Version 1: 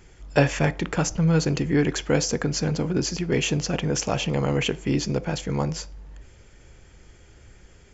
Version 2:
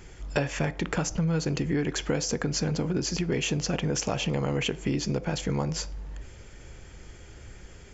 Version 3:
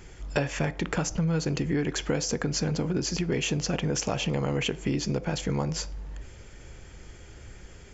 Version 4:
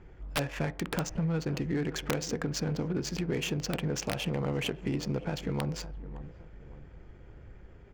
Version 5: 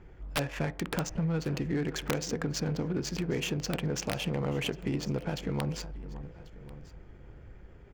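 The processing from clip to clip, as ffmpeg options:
-af "acompressor=threshold=0.0355:ratio=5,volume=1.58"
-af anull
-filter_complex "[0:a]asplit=2[s0][s1];[s1]adelay=566,lowpass=f=1900:p=1,volume=0.188,asplit=2[s2][s3];[s3]adelay=566,lowpass=f=1900:p=1,volume=0.39,asplit=2[s4][s5];[s5]adelay=566,lowpass=f=1900:p=1,volume=0.39,asplit=2[s6][s7];[s7]adelay=566,lowpass=f=1900:p=1,volume=0.39[s8];[s0][s2][s4][s6][s8]amix=inputs=5:normalize=0,adynamicsmooth=sensitivity=7:basefreq=1500,aeval=exprs='(mod(6.31*val(0)+1,2)-1)/6.31':c=same,volume=0.631"
-af "aecho=1:1:1090:0.0841"

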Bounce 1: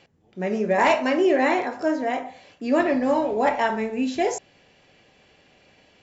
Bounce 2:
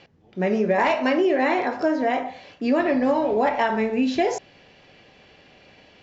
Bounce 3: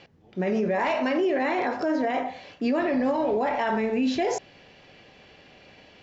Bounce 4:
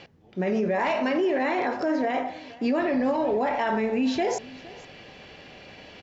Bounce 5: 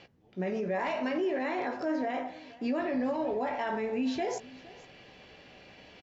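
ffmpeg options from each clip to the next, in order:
-af "lowpass=f=5700:w=0.5412,lowpass=f=5700:w=1.3066,acompressor=threshold=0.0794:ratio=6,volume=1.78"
-af "alimiter=limit=0.133:level=0:latency=1:release=17"
-af "areverse,acompressor=mode=upward:threshold=0.0126:ratio=2.5,areverse,aecho=1:1:465:0.0944"
-filter_complex "[0:a]asplit=2[s0][s1];[s1]adelay=16,volume=0.299[s2];[s0][s2]amix=inputs=2:normalize=0,volume=0.422"

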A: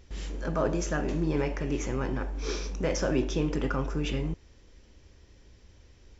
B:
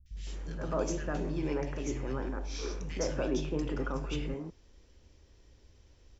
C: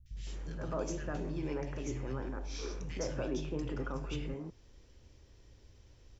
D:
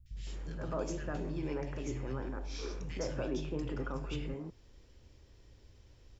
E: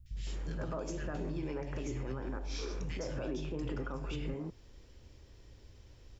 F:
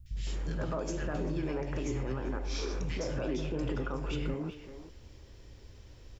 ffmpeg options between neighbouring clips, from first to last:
-filter_complex "[0:a]acrossover=split=170|1900[s0][s1][s2];[s2]adelay=60[s3];[s1]adelay=160[s4];[s0][s4][s3]amix=inputs=3:normalize=0,volume=0.631"
-filter_complex "[0:a]equalizer=f=120:w=4.6:g=7.5,asplit=2[s0][s1];[s1]acompressor=threshold=0.00891:ratio=6,volume=1.26[s2];[s0][s2]amix=inputs=2:normalize=0,volume=0.447"
-af "bandreject=f=6000:w=14"
-af "alimiter=level_in=2.51:limit=0.0631:level=0:latency=1:release=138,volume=0.398,volume=1.41"
-filter_complex "[0:a]asplit=2[s0][s1];[s1]adelay=390,highpass=300,lowpass=3400,asoftclip=type=hard:threshold=0.0141,volume=0.355[s2];[s0][s2]amix=inputs=2:normalize=0,volume=1.58"

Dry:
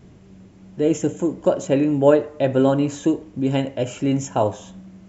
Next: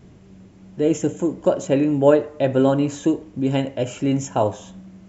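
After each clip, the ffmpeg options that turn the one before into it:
-af anull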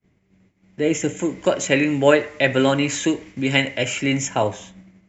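-filter_complex "[0:a]agate=range=0.0224:threshold=0.0158:ratio=3:detection=peak,equalizer=f=2100:w=2.9:g=11.5,acrossover=split=130|1500[s0][s1][s2];[s2]dynaudnorm=f=320:g=7:m=4.47[s3];[s0][s1][s3]amix=inputs=3:normalize=0,volume=0.841"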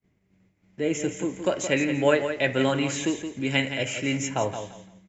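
-af "aecho=1:1:170|340|510:0.355|0.0816|0.0188,volume=0.501"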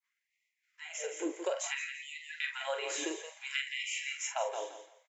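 -filter_complex "[0:a]acompressor=threshold=0.0501:ratio=3,asplit=2[s0][s1];[s1]adelay=44,volume=0.447[s2];[s0][s2]amix=inputs=2:normalize=0,afftfilt=real='re*gte(b*sr/1024,300*pow(1900/300,0.5+0.5*sin(2*PI*0.58*pts/sr)))':imag='im*gte(b*sr/1024,300*pow(1900/300,0.5+0.5*sin(2*PI*0.58*pts/sr)))':win_size=1024:overlap=0.75,volume=0.631"

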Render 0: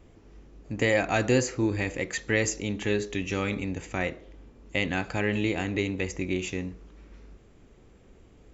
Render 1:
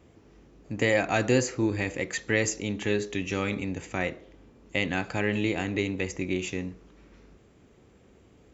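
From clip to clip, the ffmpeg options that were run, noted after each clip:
-af "highpass=77"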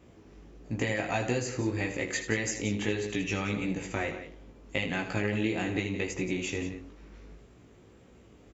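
-af "acompressor=threshold=0.0447:ratio=6,flanger=delay=16.5:depth=3:speed=1.6,aecho=1:1:78.72|174.9:0.282|0.251,volume=1.58"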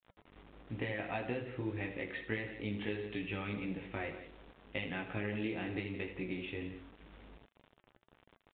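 -af "acrusher=bits=7:mix=0:aa=0.000001,flanger=delay=2.1:depth=2.3:regen=-84:speed=1.2:shape=sinusoidal,aresample=8000,aresample=44100,volume=0.668"

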